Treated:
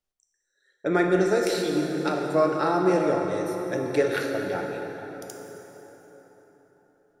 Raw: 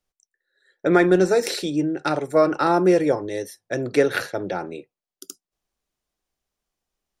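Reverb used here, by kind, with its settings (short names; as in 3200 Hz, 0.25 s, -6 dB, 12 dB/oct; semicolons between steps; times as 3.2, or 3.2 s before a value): plate-style reverb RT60 4.4 s, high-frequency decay 0.6×, DRR 1 dB; gain -6 dB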